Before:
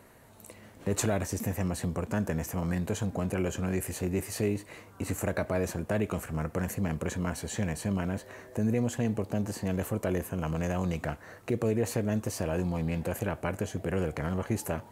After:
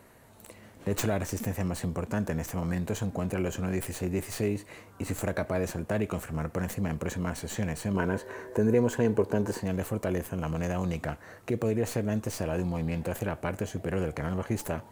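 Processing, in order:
stylus tracing distortion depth 0.087 ms
0:07.94–0:09.60: hollow resonant body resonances 420/970/1,500 Hz, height 11 dB, ringing for 20 ms

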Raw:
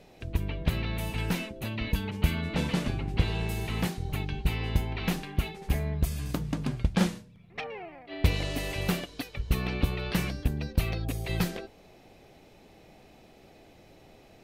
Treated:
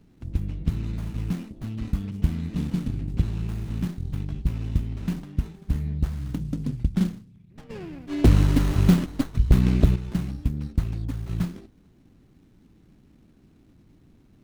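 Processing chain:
drawn EQ curve 280 Hz 0 dB, 590 Hz −24 dB, 11,000 Hz +4 dB
0:07.69–0:09.95: sine wavefolder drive 10 dB → 6 dB, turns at −10.5 dBFS
high-shelf EQ 9,700 Hz −6 dB
windowed peak hold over 17 samples
level +3 dB

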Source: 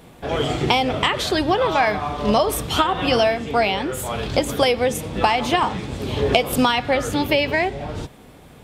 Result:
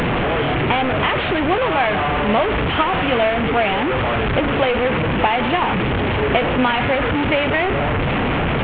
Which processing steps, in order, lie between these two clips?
linear delta modulator 16 kbit/s, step −12.5 dBFS

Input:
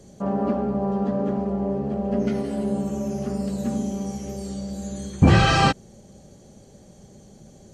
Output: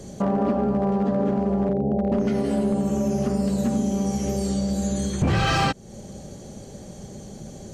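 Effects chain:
0:01.69–0:02.12: Butterworth low-pass 860 Hz 72 dB per octave
downward compressor 3 to 1, threshold −30 dBFS, peak gain reduction 15 dB
hard clipping −24.5 dBFS, distortion −19 dB
level +9 dB

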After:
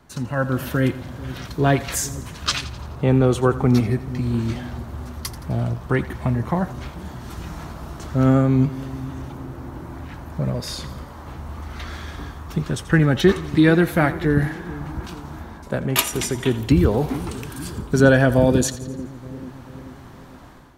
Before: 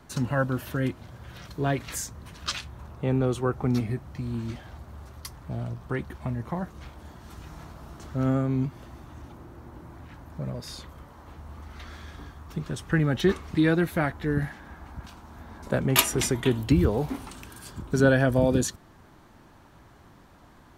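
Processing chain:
on a send: echo with a time of its own for lows and highs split 410 Hz, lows 438 ms, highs 85 ms, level −15.5 dB
on the sum: automatic gain control gain up to 10.5 dB
level −1 dB

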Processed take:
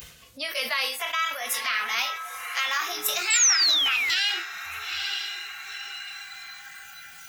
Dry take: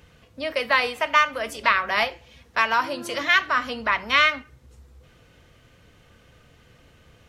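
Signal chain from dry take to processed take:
pitch glide at a constant tempo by +8.5 semitones starting unshifted
dynamic equaliser 7,600 Hz, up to −6 dB, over −46 dBFS, Q 2
feedback delay with all-pass diffusion 913 ms, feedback 42%, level −12 dB
noise reduction from a noise print of the clip's start 15 dB
convolution reverb, pre-delay 3 ms, DRR 8 dB
sound drawn into the spectrogram fall, 0:03.30–0:04.23, 1,600–8,100 Hz −26 dBFS
in parallel at +0.5 dB: upward compression, threshold −24 dBFS
on the sum: brickwall limiter −8.5 dBFS, peak gain reduction 11.5 dB
first-order pre-emphasis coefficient 0.9
level that may fall only so fast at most 75 dB per second
level +4 dB

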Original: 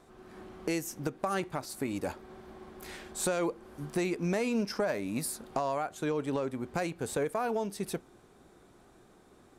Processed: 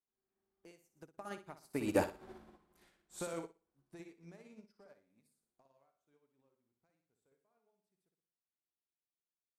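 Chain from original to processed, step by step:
source passing by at 0:02.27, 13 m/s, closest 2.3 metres
flutter between parallel walls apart 10.2 metres, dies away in 0.62 s
expander for the loud parts 2.5 to 1, over −59 dBFS
level +12 dB

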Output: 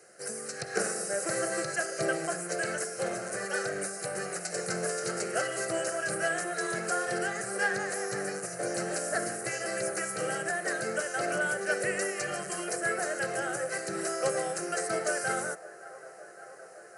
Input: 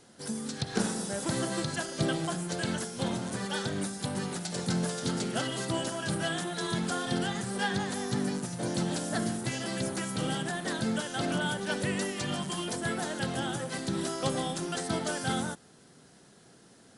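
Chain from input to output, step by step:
high-pass filter 280 Hz 12 dB per octave
phaser with its sweep stopped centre 940 Hz, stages 6
on a send: delay with a band-pass on its return 564 ms, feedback 81%, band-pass 840 Hz, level −17.5 dB
on the sum: level +5.5 dB

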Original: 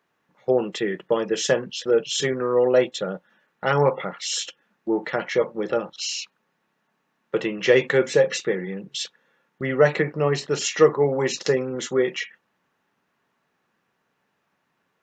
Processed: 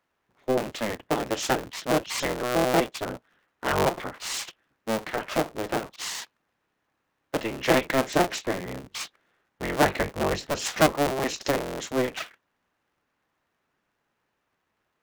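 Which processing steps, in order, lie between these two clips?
sub-harmonics by changed cycles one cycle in 3, inverted
level −4.5 dB

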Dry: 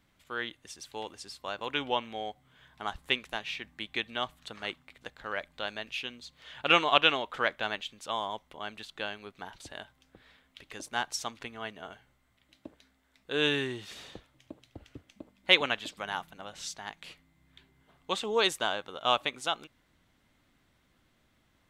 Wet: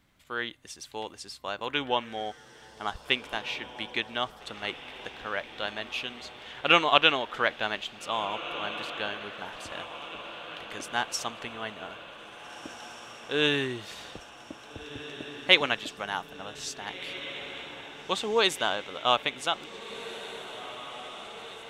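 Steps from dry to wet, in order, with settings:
feedback delay with all-pass diffusion 1,767 ms, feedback 63%, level −13 dB
level +2.5 dB

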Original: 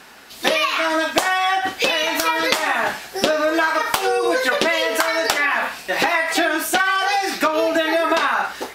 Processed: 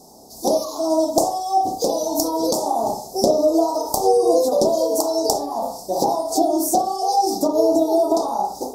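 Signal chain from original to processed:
elliptic band-stop filter 790–5,300 Hz, stop band 50 dB
convolution reverb, pre-delay 31 ms, DRR 3 dB
level +2.5 dB

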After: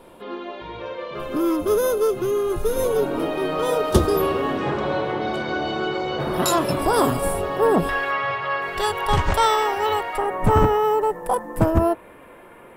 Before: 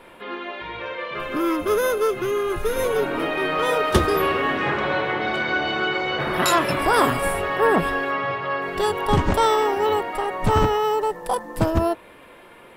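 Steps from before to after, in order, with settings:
parametric band 2,000 Hz −12.5 dB 1.5 octaves, from 0:07.89 250 Hz, from 0:10.18 4,300 Hz
level +2.5 dB

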